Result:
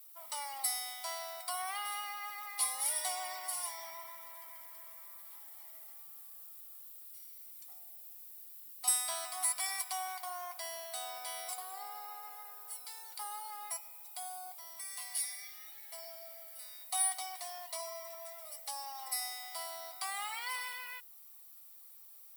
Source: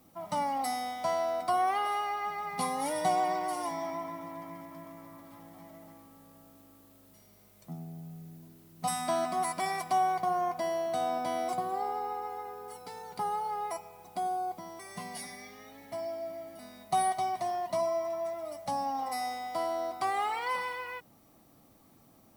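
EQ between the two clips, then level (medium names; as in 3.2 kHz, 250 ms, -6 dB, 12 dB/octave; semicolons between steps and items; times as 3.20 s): high-pass 690 Hz 12 dB/octave; differentiator; peaking EQ 6.3 kHz -6.5 dB 0.3 oct; +7.5 dB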